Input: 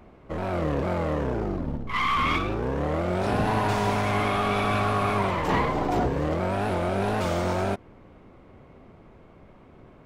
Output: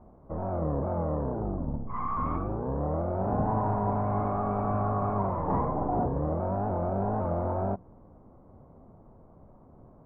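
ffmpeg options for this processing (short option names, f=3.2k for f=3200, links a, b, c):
-af "lowpass=f=1k:w=0.5412,lowpass=f=1k:w=1.3066,equalizer=f=380:w=1.6:g=-5.5,bandreject=f=60:t=h:w=6,bandreject=f=120:t=h:w=6,bandreject=f=180:t=h:w=6,volume=-1dB"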